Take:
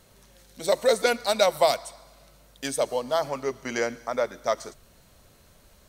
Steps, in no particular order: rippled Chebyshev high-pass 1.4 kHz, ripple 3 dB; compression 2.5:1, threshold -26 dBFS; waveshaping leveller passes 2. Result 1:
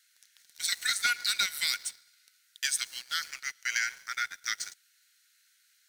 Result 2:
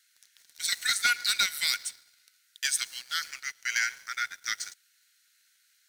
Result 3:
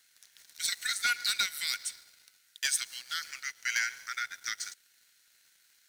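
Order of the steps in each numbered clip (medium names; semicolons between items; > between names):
rippled Chebyshev high-pass > waveshaping leveller > compression; rippled Chebyshev high-pass > compression > waveshaping leveller; compression > rippled Chebyshev high-pass > waveshaping leveller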